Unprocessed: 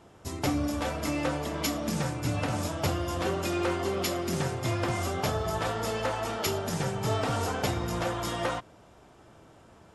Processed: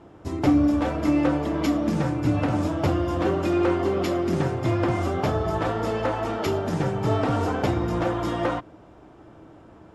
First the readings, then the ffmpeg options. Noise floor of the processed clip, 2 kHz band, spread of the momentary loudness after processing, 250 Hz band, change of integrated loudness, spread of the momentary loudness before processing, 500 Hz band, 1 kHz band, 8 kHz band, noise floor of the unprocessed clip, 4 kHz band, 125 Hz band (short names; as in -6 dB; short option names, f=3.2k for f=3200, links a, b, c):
-49 dBFS, +1.5 dB, 4 LU, +9.5 dB, +6.0 dB, 2 LU, +6.0 dB, +4.0 dB, -8.0 dB, -55 dBFS, -3.0 dB, +5.5 dB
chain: -af "lowpass=f=1.5k:p=1,equalizer=f=310:w=5.2:g=8.5,volume=5.5dB"